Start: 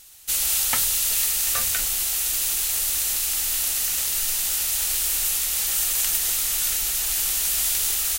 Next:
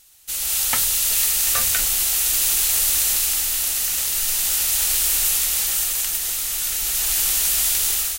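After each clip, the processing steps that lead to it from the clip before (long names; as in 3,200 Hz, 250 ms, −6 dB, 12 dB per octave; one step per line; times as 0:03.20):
automatic gain control
level −4.5 dB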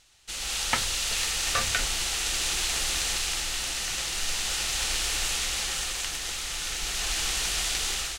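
high-frequency loss of the air 100 metres
level +1 dB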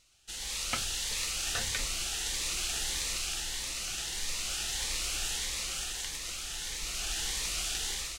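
phaser whose notches keep moving one way rising 1.6 Hz
level −5 dB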